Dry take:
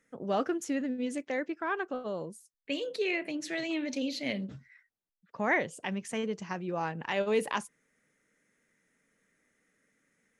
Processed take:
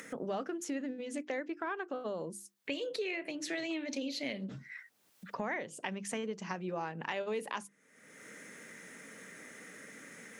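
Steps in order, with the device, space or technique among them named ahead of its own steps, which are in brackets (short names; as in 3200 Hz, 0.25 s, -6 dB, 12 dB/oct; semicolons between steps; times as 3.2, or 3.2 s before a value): HPF 150 Hz 12 dB/oct; upward and downward compression (upward compressor, threshold -39 dBFS; compressor 5:1, threshold -39 dBFS, peak gain reduction 15 dB); notches 50/100/150/200/250/300/350 Hz; gain +4.5 dB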